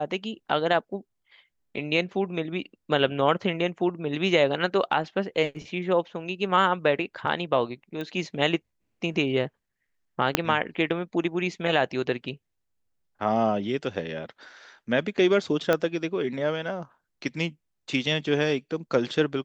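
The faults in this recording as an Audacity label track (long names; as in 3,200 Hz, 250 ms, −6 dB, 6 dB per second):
8.010000	8.010000	click −22 dBFS
10.350000	10.350000	click −3 dBFS
15.730000	15.730000	click −10 dBFS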